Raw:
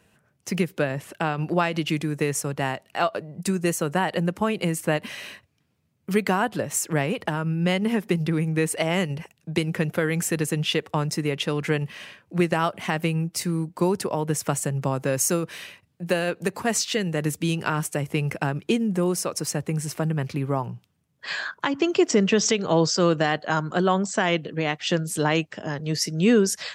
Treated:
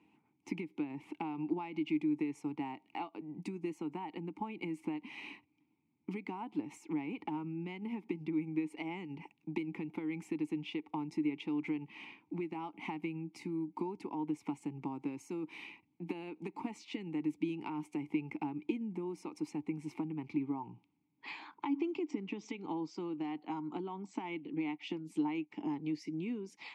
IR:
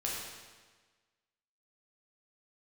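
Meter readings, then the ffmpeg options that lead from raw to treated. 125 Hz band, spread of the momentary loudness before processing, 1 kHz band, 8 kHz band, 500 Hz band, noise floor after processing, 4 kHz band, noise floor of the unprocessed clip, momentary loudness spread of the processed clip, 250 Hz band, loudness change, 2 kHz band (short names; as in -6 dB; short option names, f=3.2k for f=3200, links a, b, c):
-21.0 dB, 8 LU, -15.5 dB, under -30 dB, -19.5 dB, -76 dBFS, -22.5 dB, -68 dBFS, 8 LU, -10.5 dB, -15.0 dB, -20.0 dB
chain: -filter_complex "[0:a]acompressor=threshold=-30dB:ratio=12,asplit=3[a][b][c];[a]bandpass=f=300:t=q:w=8,volume=0dB[d];[b]bandpass=f=870:t=q:w=8,volume=-6dB[e];[c]bandpass=f=2.24k:t=q:w=8,volume=-9dB[f];[d][e][f]amix=inputs=3:normalize=0,volume=7.5dB"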